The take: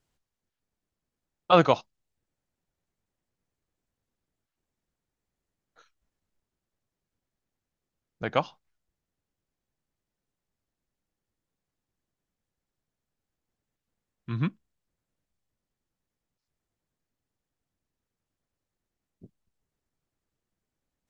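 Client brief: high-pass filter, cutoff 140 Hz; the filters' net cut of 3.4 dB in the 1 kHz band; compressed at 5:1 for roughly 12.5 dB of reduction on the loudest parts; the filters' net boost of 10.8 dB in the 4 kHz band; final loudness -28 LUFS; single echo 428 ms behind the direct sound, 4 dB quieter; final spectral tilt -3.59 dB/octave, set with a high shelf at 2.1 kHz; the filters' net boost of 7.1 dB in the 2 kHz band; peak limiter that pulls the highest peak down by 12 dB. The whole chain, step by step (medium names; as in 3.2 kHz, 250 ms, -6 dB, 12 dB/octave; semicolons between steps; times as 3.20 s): high-pass 140 Hz; peaking EQ 1 kHz -8.5 dB; peaking EQ 2 kHz +7 dB; treble shelf 2.1 kHz +4 dB; peaking EQ 4 kHz +8 dB; compression 5:1, threshold -26 dBFS; peak limiter -24 dBFS; delay 428 ms -4 dB; trim +13 dB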